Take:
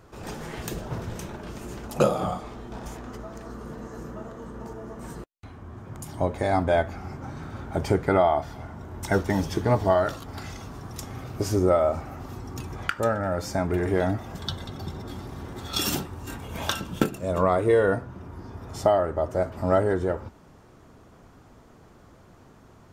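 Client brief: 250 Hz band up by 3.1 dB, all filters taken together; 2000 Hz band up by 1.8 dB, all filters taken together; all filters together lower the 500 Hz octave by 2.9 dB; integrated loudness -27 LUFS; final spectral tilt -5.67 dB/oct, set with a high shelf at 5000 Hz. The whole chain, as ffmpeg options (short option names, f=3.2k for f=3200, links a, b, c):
-af "equalizer=f=250:t=o:g=6,equalizer=f=500:t=o:g=-5.5,equalizer=f=2k:t=o:g=3.5,highshelf=f=5k:g=-5.5,volume=1dB"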